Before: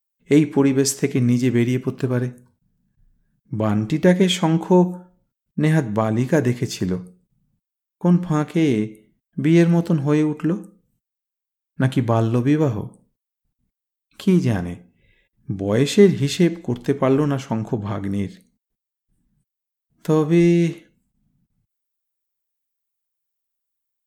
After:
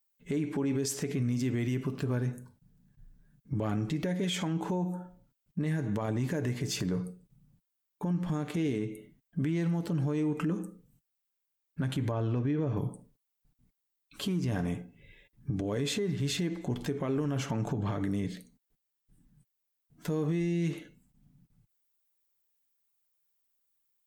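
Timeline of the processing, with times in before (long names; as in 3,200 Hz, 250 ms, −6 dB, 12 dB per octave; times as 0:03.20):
0:12.11–0:12.77: high-frequency loss of the air 160 metres
whole clip: downward compressor 6 to 1, threshold −25 dBFS; comb filter 6.9 ms, depth 32%; brickwall limiter −26 dBFS; level +2.5 dB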